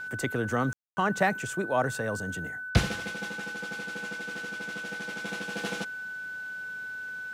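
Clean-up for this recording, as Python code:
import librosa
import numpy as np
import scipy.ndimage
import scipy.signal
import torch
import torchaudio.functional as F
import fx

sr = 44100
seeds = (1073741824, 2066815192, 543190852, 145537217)

y = fx.notch(x, sr, hz=1500.0, q=30.0)
y = fx.fix_ambience(y, sr, seeds[0], print_start_s=6.09, print_end_s=6.59, start_s=0.73, end_s=0.97)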